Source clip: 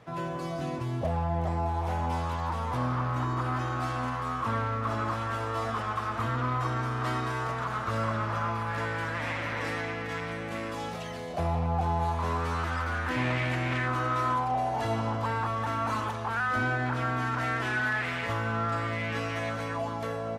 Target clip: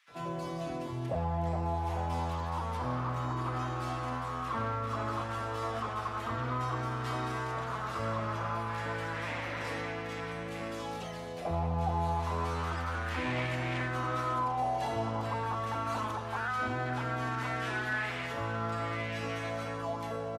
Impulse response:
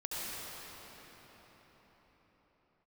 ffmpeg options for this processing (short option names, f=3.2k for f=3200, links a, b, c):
-filter_complex "[0:a]acrossover=split=160|1600[a][b][c];[b]adelay=80[d];[a]adelay=110[e];[e][d][c]amix=inputs=3:normalize=0,volume=-2.5dB"